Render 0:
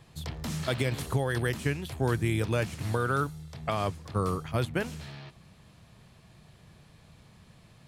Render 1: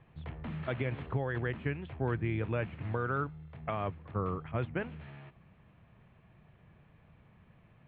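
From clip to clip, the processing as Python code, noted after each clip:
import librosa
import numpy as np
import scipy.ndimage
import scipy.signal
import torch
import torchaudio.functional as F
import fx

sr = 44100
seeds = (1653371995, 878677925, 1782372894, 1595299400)

y = scipy.signal.sosfilt(scipy.signal.cheby2(4, 40, 5200.0, 'lowpass', fs=sr, output='sos'), x)
y = y * 10.0 ** (-5.0 / 20.0)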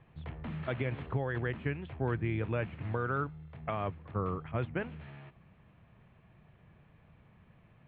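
y = x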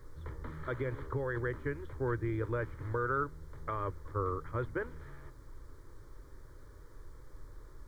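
y = fx.dmg_noise_colour(x, sr, seeds[0], colour='brown', level_db=-49.0)
y = fx.fixed_phaser(y, sr, hz=720.0, stages=6)
y = y * 10.0 ** (2.0 / 20.0)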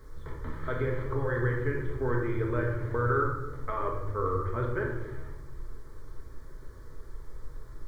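y = fx.room_shoebox(x, sr, seeds[1], volume_m3=500.0, walls='mixed', distance_m=1.5)
y = y * 10.0 ** (1.5 / 20.0)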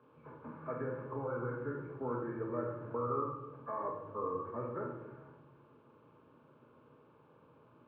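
y = fx.freq_compress(x, sr, knee_hz=1000.0, ratio=1.5)
y = fx.cabinet(y, sr, low_hz=160.0, low_slope=24, high_hz=2400.0, hz=(220.0, 380.0, 770.0, 1400.0), db=(3, -8, 3, -5))
y = y * 10.0 ** (-4.0 / 20.0)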